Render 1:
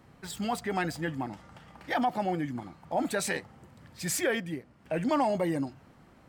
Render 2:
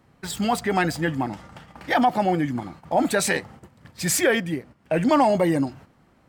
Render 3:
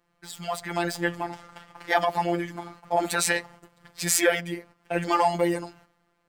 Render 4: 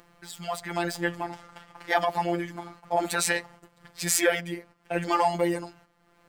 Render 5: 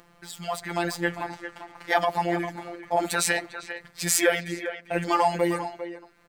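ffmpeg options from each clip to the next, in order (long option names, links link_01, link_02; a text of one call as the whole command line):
ffmpeg -i in.wav -af "agate=range=-10dB:threshold=-51dB:ratio=16:detection=peak,volume=8.5dB" out.wav
ffmpeg -i in.wav -af "equalizer=frequency=170:width=0.6:gain=-9.5,dynaudnorm=framelen=120:gausssize=11:maxgain=11.5dB,afftfilt=real='hypot(re,im)*cos(PI*b)':imag='0':win_size=1024:overlap=0.75,volume=-5.5dB" out.wav
ffmpeg -i in.wav -af "acompressor=mode=upward:threshold=-42dB:ratio=2.5,volume=-1.5dB" out.wav
ffmpeg -i in.wav -filter_complex "[0:a]asplit=2[link_01][link_02];[link_02]adelay=400,highpass=300,lowpass=3400,asoftclip=type=hard:threshold=-12dB,volume=-10dB[link_03];[link_01][link_03]amix=inputs=2:normalize=0,volume=1.5dB" out.wav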